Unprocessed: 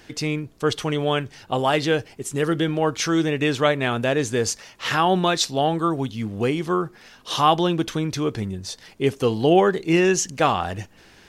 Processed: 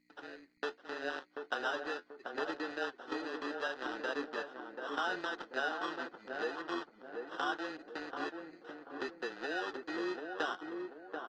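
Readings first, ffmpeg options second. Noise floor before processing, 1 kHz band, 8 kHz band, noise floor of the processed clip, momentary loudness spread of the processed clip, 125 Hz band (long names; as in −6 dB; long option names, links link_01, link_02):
−51 dBFS, −17.0 dB, −30.5 dB, −65 dBFS, 8 LU, −40.0 dB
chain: -filter_complex "[0:a]afftfilt=real='real(if(lt(b,272),68*(eq(floor(b/68),0)*3+eq(floor(b/68),1)*2+eq(floor(b/68),2)*1+eq(floor(b/68),3)*0)+mod(b,68),b),0)':imag='imag(if(lt(b,272),68*(eq(floor(b/68),0)*3+eq(floor(b/68),1)*2+eq(floor(b/68),2)*1+eq(floor(b/68),3)*0)+mod(b,68),b),0)':win_size=2048:overlap=0.75,afwtdn=0.0794,agate=range=-60dB:threshold=-56dB:ratio=16:detection=peak,adynamicequalizer=threshold=0.0141:dfrequency=2100:dqfactor=2.3:tfrequency=2100:tqfactor=2.3:attack=5:release=100:ratio=0.375:range=1.5:mode=cutabove:tftype=bell,acompressor=threshold=-35dB:ratio=5,aeval=exprs='val(0)+0.00251*(sin(2*PI*60*n/s)+sin(2*PI*2*60*n/s)/2+sin(2*PI*3*60*n/s)/3+sin(2*PI*4*60*n/s)/4+sin(2*PI*5*60*n/s)/5)':channel_layout=same,acrusher=samples=20:mix=1:aa=0.000001,flanger=delay=5.3:depth=6.4:regen=56:speed=0.75:shape=sinusoidal,highpass=frequency=340:width=0.5412,highpass=frequency=340:width=1.3066,equalizer=frequency=400:width_type=q:width=4:gain=-5,equalizer=frequency=610:width_type=q:width=4:gain=-4,equalizer=frequency=1000:width_type=q:width=4:gain=-4,equalizer=frequency=1500:width_type=q:width=4:gain=9,equalizer=frequency=2300:width_type=q:width=4:gain=-8,lowpass=frequency=4600:width=0.5412,lowpass=frequency=4600:width=1.3066,asplit=2[link_01][link_02];[link_02]adelay=736,lowpass=frequency=970:poles=1,volume=-3.5dB,asplit=2[link_03][link_04];[link_04]adelay=736,lowpass=frequency=970:poles=1,volume=0.43,asplit=2[link_05][link_06];[link_06]adelay=736,lowpass=frequency=970:poles=1,volume=0.43,asplit=2[link_07][link_08];[link_08]adelay=736,lowpass=frequency=970:poles=1,volume=0.43,asplit=2[link_09][link_10];[link_10]adelay=736,lowpass=frequency=970:poles=1,volume=0.43[link_11];[link_03][link_05][link_07][link_09][link_11]amix=inputs=5:normalize=0[link_12];[link_01][link_12]amix=inputs=2:normalize=0,volume=3.5dB" -ar 48000 -c:a libopus -b:a 24k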